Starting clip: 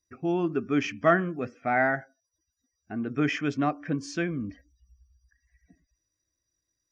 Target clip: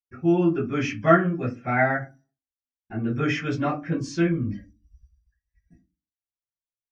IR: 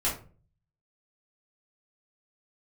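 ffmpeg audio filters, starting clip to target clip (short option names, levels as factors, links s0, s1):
-filter_complex "[0:a]agate=range=0.0224:threshold=0.002:ratio=3:detection=peak[s0];[1:a]atrim=start_sample=2205,asetrate=88200,aresample=44100[s1];[s0][s1]afir=irnorm=-1:irlink=0"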